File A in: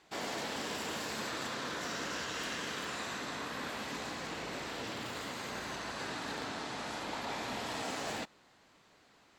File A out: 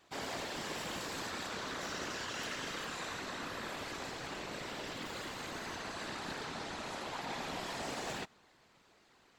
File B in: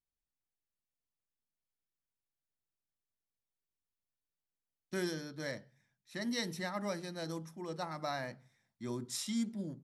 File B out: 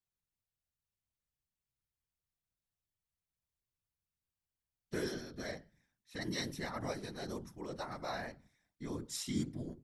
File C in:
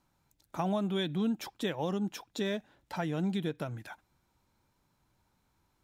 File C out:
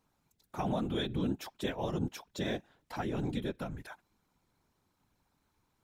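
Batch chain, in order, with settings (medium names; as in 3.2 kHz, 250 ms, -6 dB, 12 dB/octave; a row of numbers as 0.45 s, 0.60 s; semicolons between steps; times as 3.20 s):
whisper effect; trim -2 dB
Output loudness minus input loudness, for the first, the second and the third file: -2.0 LU, -2.0 LU, -2.0 LU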